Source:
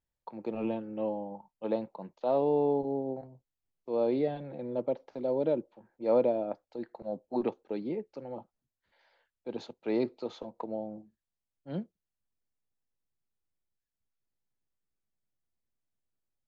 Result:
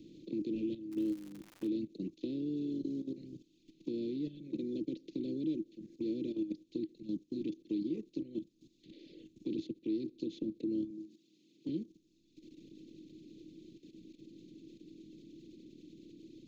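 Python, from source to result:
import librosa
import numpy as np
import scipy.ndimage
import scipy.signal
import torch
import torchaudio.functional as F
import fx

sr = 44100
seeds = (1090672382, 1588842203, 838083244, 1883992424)

y = fx.bin_compress(x, sr, power=0.4)
y = fx.dereverb_blind(y, sr, rt60_s=1.5)
y = scipy.signal.sosfilt(scipy.signal.ellip(3, 1.0, 60, [320.0, 3000.0], 'bandstop', fs=sr, output='sos'), y)
y = fx.peak_eq(y, sr, hz=550.0, db=fx.line((6.93, -9.0), (7.73, -2.5)), octaves=1.6, at=(6.93, 7.73), fade=0.02)
y = fx.highpass(y, sr, hz=160.0, slope=24, at=(10.9, 11.69))
y = fx.level_steps(y, sr, step_db=13)
y = fx.small_body(y, sr, hz=(320.0, 1100.0), ring_ms=95, db=12)
y = fx.dmg_crackle(y, sr, seeds[0], per_s=190.0, level_db=-42.0, at=(0.91, 1.67), fade=0.02)
y = fx.band_squash(y, sr, depth_pct=40)
y = y * 10.0 ** (-1.0 / 20.0)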